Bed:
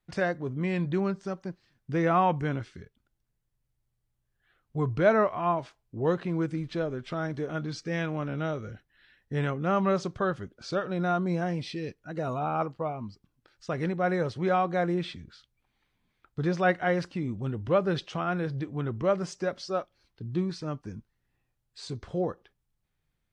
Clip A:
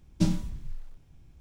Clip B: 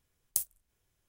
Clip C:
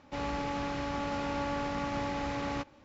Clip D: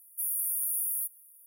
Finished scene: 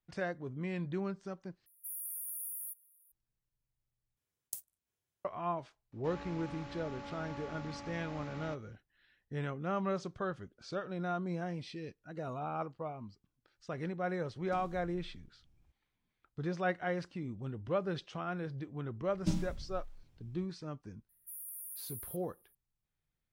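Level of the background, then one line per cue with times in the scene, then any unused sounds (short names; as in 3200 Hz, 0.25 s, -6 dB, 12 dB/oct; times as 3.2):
bed -9 dB
1.66 replace with D -11 dB
4.17 replace with B -11.5 dB + HPF 95 Hz
5.92 add C -12.5 dB
14.32 add A -15 dB + compressor, threshold -30 dBFS
19.06 add A -8 dB
21.09 add D -15 dB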